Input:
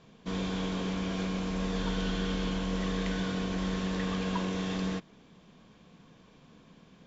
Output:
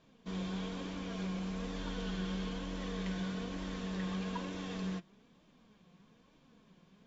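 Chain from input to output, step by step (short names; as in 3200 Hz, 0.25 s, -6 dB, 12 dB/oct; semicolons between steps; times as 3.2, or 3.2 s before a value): flange 1.1 Hz, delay 3.1 ms, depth 2.7 ms, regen +50%; gain -3.5 dB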